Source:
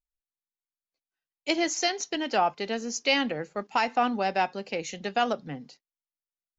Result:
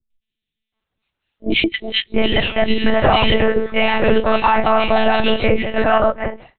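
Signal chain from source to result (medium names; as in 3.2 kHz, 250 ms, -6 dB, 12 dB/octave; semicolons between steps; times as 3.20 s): phase randomisation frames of 100 ms; 1.53–2.14 s: gate -24 dBFS, range -26 dB; compression, threshold -28 dBFS, peak gain reduction 8.5 dB; three bands offset in time lows, highs, mids 100/730 ms, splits 350/2300 Hz; monotone LPC vocoder at 8 kHz 220 Hz; loudness maximiser +26 dB; trim -2.5 dB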